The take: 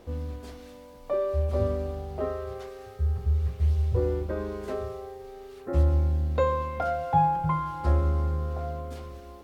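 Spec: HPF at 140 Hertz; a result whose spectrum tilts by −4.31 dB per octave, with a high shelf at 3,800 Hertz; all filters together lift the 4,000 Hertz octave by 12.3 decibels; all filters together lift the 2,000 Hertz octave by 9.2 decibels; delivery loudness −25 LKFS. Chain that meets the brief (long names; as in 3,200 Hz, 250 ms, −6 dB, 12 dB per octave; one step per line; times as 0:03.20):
high-pass filter 140 Hz
parametric band 2,000 Hz +9 dB
high-shelf EQ 3,800 Hz +7 dB
parametric band 4,000 Hz +8 dB
level +4.5 dB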